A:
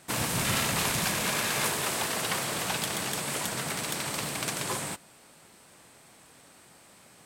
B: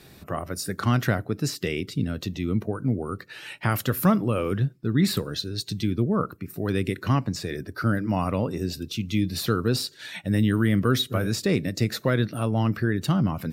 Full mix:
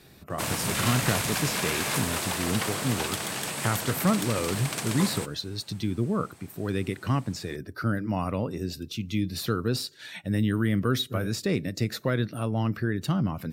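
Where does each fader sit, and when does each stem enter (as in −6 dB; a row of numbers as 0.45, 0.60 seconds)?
−0.5, −3.5 decibels; 0.30, 0.00 seconds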